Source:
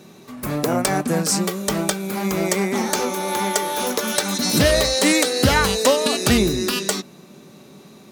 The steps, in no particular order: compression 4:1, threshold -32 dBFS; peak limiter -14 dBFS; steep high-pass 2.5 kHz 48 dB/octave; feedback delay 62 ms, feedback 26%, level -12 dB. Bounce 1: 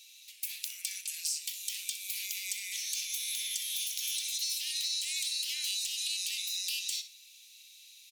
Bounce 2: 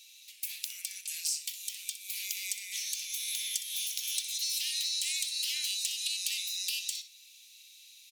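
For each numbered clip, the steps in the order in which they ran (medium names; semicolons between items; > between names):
peak limiter > steep high-pass > compression > feedback delay; steep high-pass > compression > peak limiter > feedback delay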